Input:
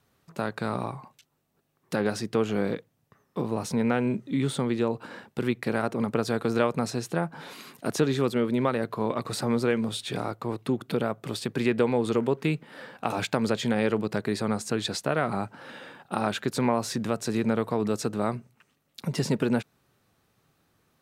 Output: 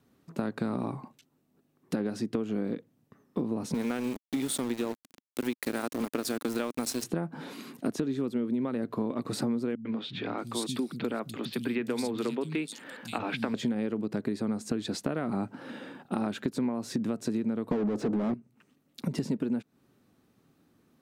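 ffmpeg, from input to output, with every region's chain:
-filter_complex "[0:a]asettb=1/sr,asplit=3[s0][s1][s2];[s0]atrim=end=3.744[s3];[s1]atrim=start=3.74:end=7.04,asetpts=PTS-STARTPTS,afade=t=in:d=0.004:c=qsin,afade=t=out:st=3.296:d=0.004:c=qsin,aemphasis=mode=production:type=riaa,aeval=exprs='val(0)*gte(abs(val(0)),0.0282)':c=same[s4];[s2]atrim=start=7.036[s5];[s3][s4]acrossfade=d=0.004:c1=hsin:c2=qsin[s6];[s6][s5]acrossfade=d=0.004:c1=qsin:c2=hsin,asettb=1/sr,asplit=3[s7][s8][s9];[s7]atrim=end=9.754[s10];[s8]atrim=start=9.75:end=13.54,asetpts=PTS-STARTPTS,afade=t=in:d=0.004:c=qsin,afade=t=out:st=3.786:d=0.004:c=qsin,tiltshelf=f=1100:g=-7,acrossover=split=190|3400[s11][s12][s13];[s12]adelay=100[s14];[s13]adelay=630[s15];[s11][s14][s15]amix=inputs=3:normalize=0,atrim=end_sample=167139[s16];[s9]atrim=start=13.536[s17];[s10][s16]acrossfade=d=0.004:c1=hsin:c2=qsin[s18];[s18][s17]acrossfade=d=0.004:c1=qsin:c2=hsin,asettb=1/sr,asplit=3[s19][s20][s21];[s19]atrim=end=17.714[s22];[s20]atrim=start=17.71:end=18.34,asetpts=PTS-STARTPTS,afade=t=in:d=0.004:c=qsin,afade=t=out:st=0.626:d=0.004:c=qsin,tiltshelf=f=920:g=8.5,asplit=2[s23][s24];[s24]highpass=f=720:p=1,volume=35.5,asoftclip=type=tanh:threshold=0.355[s25];[s23][s25]amix=inputs=2:normalize=0,lowpass=f=1800:p=1,volume=0.501[s26];[s21]atrim=start=18.336[s27];[s22][s26]acrossfade=d=0.004:c1=hsin:c2=qsin[s28];[s28][s27]acrossfade=d=0.004:c1=qsin:c2=hsin,equalizer=f=260:w=1.1:g=13.5,acompressor=threshold=0.0708:ratio=10,volume=0.668"

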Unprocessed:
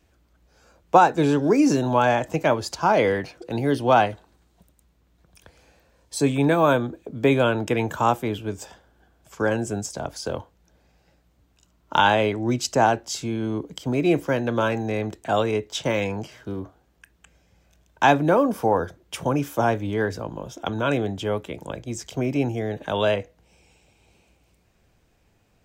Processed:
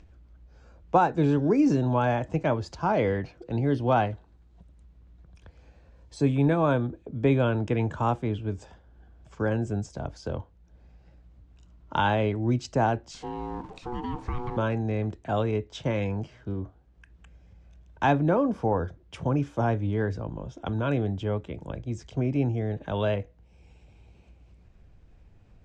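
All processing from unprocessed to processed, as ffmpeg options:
-filter_complex "[0:a]asettb=1/sr,asplit=3[s0][s1][s2];[s0]atrim=end=13.114[s3];[s1]atrim=start=13.11:end=14.57,asetpts=PTS-STARTPTS,afade=t=in:d=0.004:c=qsin,afade=t=out:st=1.456:d=0.004:c=qsin,aeval=exprs='val(0)+0.5*0.0158*sgn(val(0))':c=same,acompressor=threshold=0.0794:ratio=6:attack=3.2:release=140:knee=1:detection=peak,aeval=exprs='val(0)*sin(2*PI*610*n/s)':c=same[s4];[s2]atrim=start=14.566[s5];[s3][s4]acrossfade=d=0.004:c1=hsin:c2=qsin[s6];[s6][s5]acrossfade=d=0.004:c1=qsin:c2=hsin,lowpass=f=8700:w=0.5412,lowpass=f=8700:w=1.3066,aemphasis=mode=reproduction:type=bsi,acompressor=mode=upward:threshold=0.0112:ratio=2.5,volume=0.447"

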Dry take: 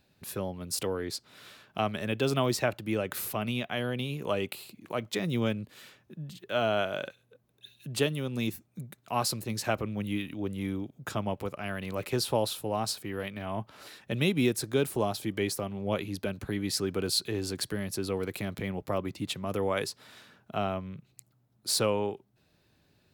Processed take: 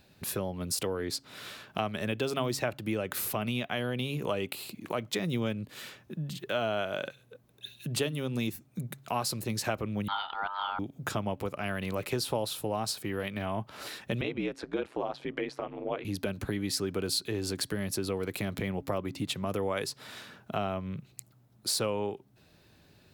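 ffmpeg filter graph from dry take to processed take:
-filter_complex "[0:a]asettb=1/sr,asplit=3[s0][s1][s2];[s0]atrim=end=10.084[s3];[s1]atrim=start=10.08:end=10.79,asetpts=PTS-STARTPTS,afade=t=in:d=0.004:c=qsin,afade=t=out:st=0.706:d=0.004:c=qsin,lowpass=f=2000:t=q:w=4.7,aeval=exprs='val(0)*sin(2*PI*1100*n/s)':c=same[s4];[s2]atrim=start=10.786[s5];[s3][s4]acrossfade=d=0.004:c1=hsin:c2=qsin[s6];[s6][s5]acrossfade=d=0.004:c1=qsin:c2=hsin,asettb=1/sr,asplit=3[s7][s8][s9];[s7]atrim=end=14.214[s10];[s8]atrim=start=14.21:end=16.05,asetpts=PTS-STARTPTS,afade=t=in:d=0.004:c=qsin,afade=t=out:st=1.836:d=0.004:c=qsin,highpass=320,lowpass=2500,aeval=exprs='val(0)*sin(2*PI*60*n/s)':c=same[s11];[s9]atrim=start=16.046[s12];[s10][s11]acrossfade=d=0.004:c1=hsin:c2=qsin[s13];[s13][s12]acrossfade=d=0.004:c1=qsin:c2=hsin,bandreject=f=137.1:t=h:w=4,bandreject=f=274.2:t=h:w=4,acompressor=threshold=0.0112:ratio=2.5,volume=2.24"

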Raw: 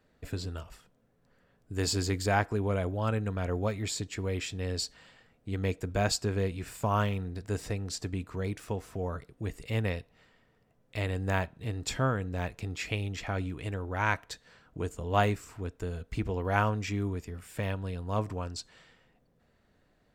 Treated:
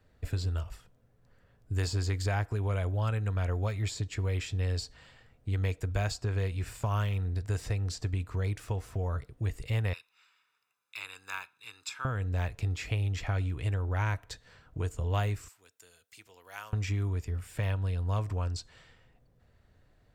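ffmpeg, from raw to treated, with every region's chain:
-filter_complex "[0:a]asettb=1/sr,asplit=3[s0][s1][s2];[s0]atrim=end=9.934[s3];[s1]atrim=start=9.93:end=12.05,asetpts=PTS-STARTPTS,afade=t=in:d=0.004:c=qsin,afade=t=out:st=2.116:d=0.004:c=qsin,highpass=1400,aecho=1:1:0.8:0.77,atrim=end_sample=93492,asoftclip=type=hard:threshold=0.106[s4];[s2]atrim=start=12.046[s5];[s3][s4]acrossfade=d=0.004:c1=hsin:c2=qsin[s6];[s6][s5]acrossfade=d=0.004:c1=qsin:c2=hsin,asettb=1/sr,asplit=3[s7][s8][s9];[s7]atrim=end=15.484[s10];[s8]atrim=start=15.48:end=16.73,asetpts=PTS-STARTPTS,afade=t=in:d=0.004:c=qsin,afade=t=out:st=1.246:d=0.004:c=qsin,highpass=120,aderivative[s11];[s9]atrim=start=16.726[s12];[s10][s11]acrossfade=d=0.004:c1=hsin:c2=qsin[s13];[s13][s12]acrossfade=d=0.004:c1=qsin:c2=hsin,acrossover=split=650|1500|7800[s14][s15][s16][s17];[s14]acompressor=threshold=0.0178:ratio=4[s18];[s15]acompressor=threshold=0.0112:ratio=4[s19];[s16]acompressor=threshold=0.0112:ratio=4[s20];[s17]acompressor=threshold=0.002:ratio=4[s21];[s18][s19][s20][s21]amix=inputs=4:normalize=0,lowshelf=f=140:t=q:w=1.5:g=7.5"

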